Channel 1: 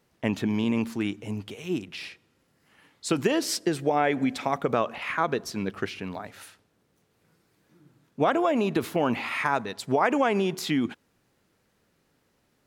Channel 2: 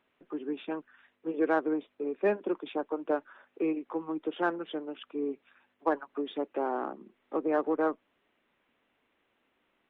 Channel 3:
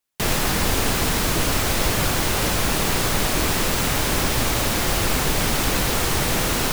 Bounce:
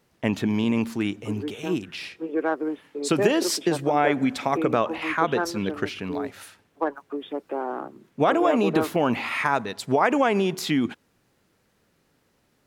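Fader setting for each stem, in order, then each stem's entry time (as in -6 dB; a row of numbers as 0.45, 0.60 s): +2.5 dB, +2.0 dB, off; 0.00 s, 0.95 s, off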